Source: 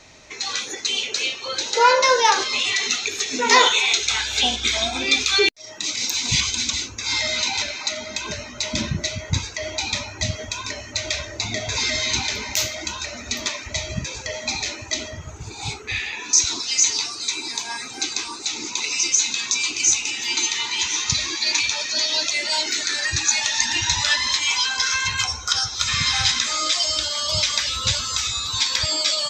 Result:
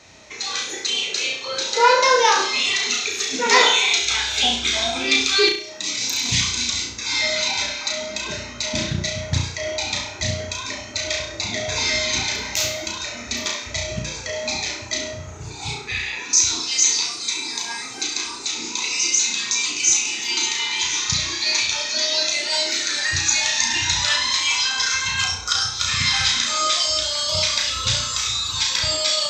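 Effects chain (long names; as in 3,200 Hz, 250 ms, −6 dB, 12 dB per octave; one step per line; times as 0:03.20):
high-pass filter 55 Hz
on a send: flutter between parallel walls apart 5.8 metres, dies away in 0.5 s
on the sum: highs frequency-modulated by the lows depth 0.25 ms
level −1 dB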